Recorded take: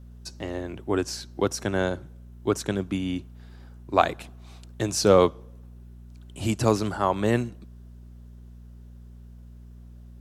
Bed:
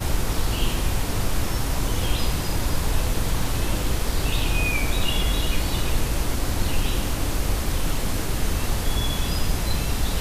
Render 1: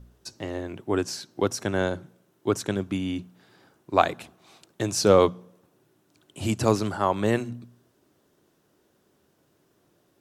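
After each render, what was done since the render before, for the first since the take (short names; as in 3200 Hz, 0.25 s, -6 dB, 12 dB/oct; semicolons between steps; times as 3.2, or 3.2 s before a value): de-hum 60 Hz, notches 4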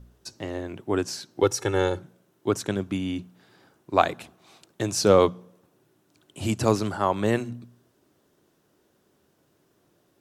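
1.42–1.99 comb 2.3 ms, depth 89%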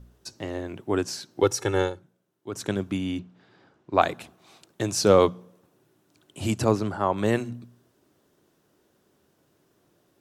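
1.81–2.64 dip -11.5 dB, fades 0.13 s; 3.19–4.02 air absorption 120 m; 6.64–7.18 high shelf 2600 Hz -9 dB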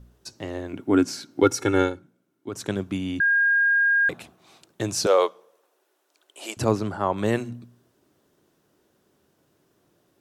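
0.73–2.49 small resonant body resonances 270/1400/2200 Hz, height 12 dB; 3.2–4.09 bleep 1620 Hz -16.5 dBFS; 5.06–6.57 HPF 440 Hz 24 dB/oct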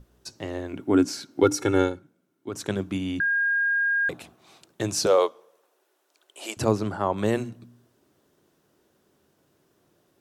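notches 60/120/180/240/300 Hz; dynamic EQ 1900 Hz, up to -4 dB, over -31 dBFS, Q 0.82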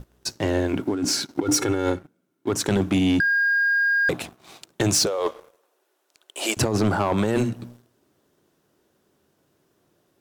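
negative-ratio compressor -27 dBFS, ratio -1; sample leveller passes 2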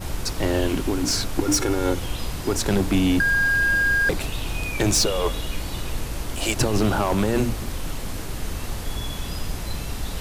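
add bed -5.5 dB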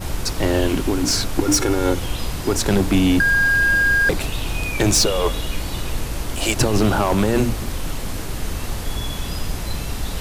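gain +3.5 dB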